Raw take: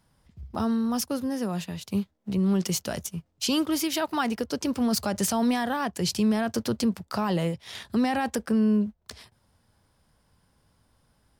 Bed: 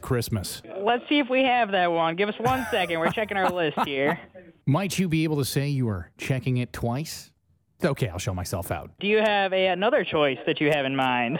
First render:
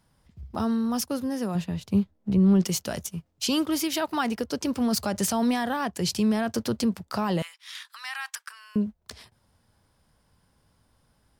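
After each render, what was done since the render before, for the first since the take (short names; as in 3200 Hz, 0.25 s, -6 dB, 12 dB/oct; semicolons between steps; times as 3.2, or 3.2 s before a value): 1.55–2.65 tilt -2 dB/oct; 7.42–8.76 steep high-pass 1100 Hz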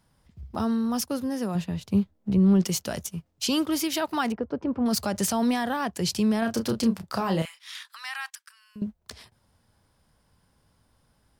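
4.32–4.86 LPF 1200 Hz; 6.39–7.76 doubler 31 ms -7 dB; 8.3–8.82 passive tone stack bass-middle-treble 5-5-5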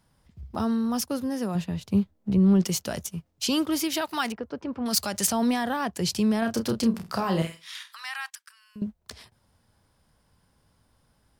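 4.01–5.27 tilt shelf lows -5.5 dB, about 1300 Hz; 6.89–8.03 flutter echo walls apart 8.4 m, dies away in 0.28 s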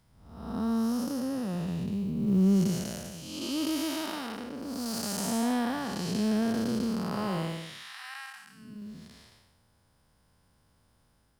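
time blur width 0.361 s; companded quantiser 8-bit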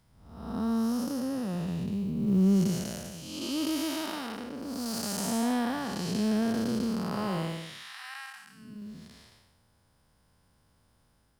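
nothing audible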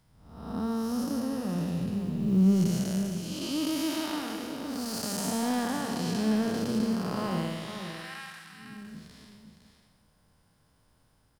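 on a send: echo 0.508 s -8.5 dB; on the sum: shoebox room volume 1500 m³, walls mixed, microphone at 0.46 m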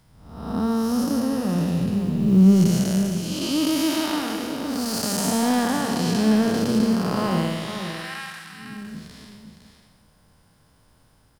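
gain +8 dB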